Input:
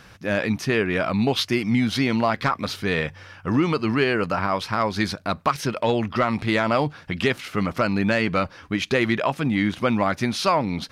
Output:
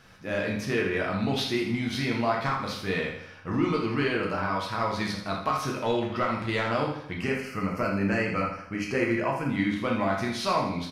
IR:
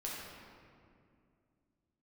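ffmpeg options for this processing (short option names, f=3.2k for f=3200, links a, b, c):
-filter_complex "[0:a]asettb=1/sr,asplit=3[a][b][c];[a]atrim=end=7.184[d];[b]atrim=start=7.18:end=9.49,asetpts=PTS-STARTPTS,afade=t=in:d=0.004:c=qsin,afade=t=out:st=2.306:d=0.004:c=qsin,asuperstop=centerf=3600:order=4:qfactor=2.2[e];[c]atrim=start=9.486[f];[d][e]acrossfade=d=0.004:c1=hsin:c2=qsin[g];[g][f]acrossfade=d=0.004:c1=qsin:c2=hsin,aecho=1:1:81|162|243|324|405:0.398|0.183|0.0842|0.0388|0.0178[h];[1:a]atrim=start_sample=2205,atrim=end_sample=3087[i];[h][i]afir=irnorm=-1:irlink=0,volume=-4dB"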